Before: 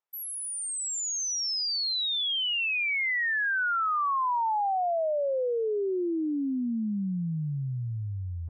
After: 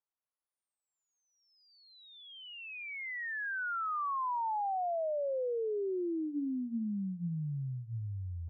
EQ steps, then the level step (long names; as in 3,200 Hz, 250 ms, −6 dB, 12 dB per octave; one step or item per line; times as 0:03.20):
low-pass filter 1,900 Hz
high-frequency loss of the air 370 metres
mains-hum notches 60/120/180/240/300 Hz
−5.0 dB